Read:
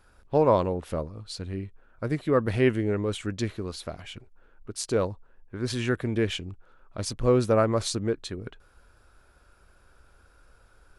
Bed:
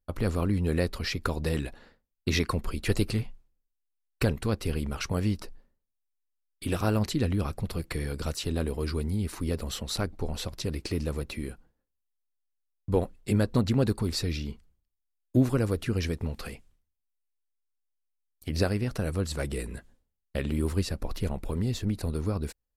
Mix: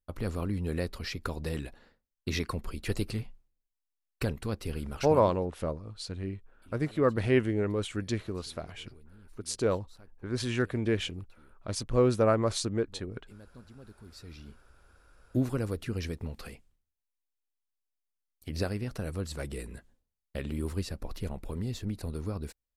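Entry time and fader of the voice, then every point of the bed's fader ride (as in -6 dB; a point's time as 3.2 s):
4.70 s, -2.5 dB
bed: 5.1 s -5.5 dB
5.39 s -27 dB
13.82 s -27 dB
14.83 s -5.5 dB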